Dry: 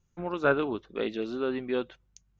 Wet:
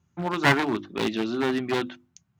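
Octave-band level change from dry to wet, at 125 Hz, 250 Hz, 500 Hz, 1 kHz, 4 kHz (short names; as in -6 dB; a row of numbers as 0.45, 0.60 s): +10.0, +6.0, +0.5, +7.0, +11.5 dB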